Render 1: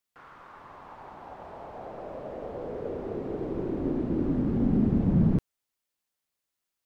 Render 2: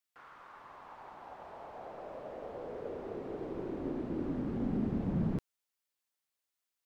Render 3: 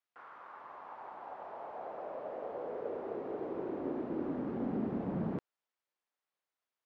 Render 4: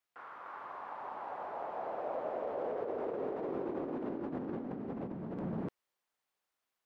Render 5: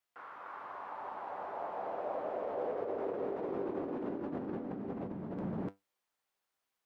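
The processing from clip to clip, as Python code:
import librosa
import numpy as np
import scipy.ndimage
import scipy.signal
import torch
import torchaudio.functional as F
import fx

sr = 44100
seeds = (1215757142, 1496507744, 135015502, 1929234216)

y1 = fx.low_shelf(x, sr, hz=390.0, db=-8.5)
y1 = F.gain(torch.from_numpy(y1), -3.0).numpy()
y2 = fx.bandpass_q(y1, sr, hz=760.0, q=0.56)
y2 = F.gain(torch.from_numpy(y2), 3.5).numpy()
y3 = y2 + 10.0 ** (-4.0 / 20.0) * np.pad(y2, (int(298 * sr / 1000.0), 0))[:len(y2)]
y3 = fx.over_compress(y3, sr, threshold_db=-39.0, ratio=-1.0)
y3 = F.gain(torch.from_numpy(y3), 1.0).numpy()
y4 = fx.comb_fb(y3, sr, f0_hz=98.0, decay_s=0.18, harmonics='all', damping=0.0, mix_pct=60)
y4 = F.gain(torch.from_numpy(y4), 4.5).numpy()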